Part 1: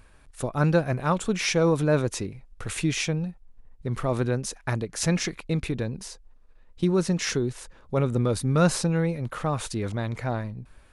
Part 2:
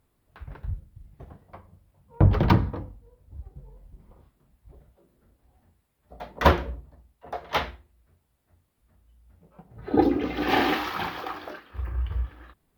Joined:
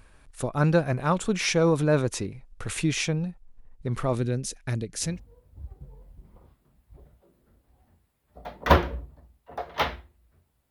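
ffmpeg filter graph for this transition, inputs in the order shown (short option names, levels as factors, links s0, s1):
-filter_complex "[0:a]asettb=1/sr,asplit=3[s0][s1][s2];[s0]atrim=end=4.154[s3];[s1]atrim=start=4.15:end=5.2,asetpts=PTS-STARTPTS,afade=t=in:d=0.004:c=qsin,afade=t=out:st=1.046:d=0.004:c=qsin,equalizer=f=1000:w=1:g=-13.5[s4];[s2]atrim=start=5.196[s5];[s3][s4]acrossfade=d=0.004:c1=hsin:c2=qsin[s6];[s6][s5]acrossfade=d=0.004:c1=qsin:c2=hsin,apad=whole_dur=10.7,atrim=end=10.7,atrim=end=5.2,asetpts=PTS-STARTPTS[s7];[1:a]atrim=start=2.75:end=8.45,asetpts=PTS-STARTPTS[s8];[s7][s8]acrossfade=d=0.2:c1=tri:c2=tri"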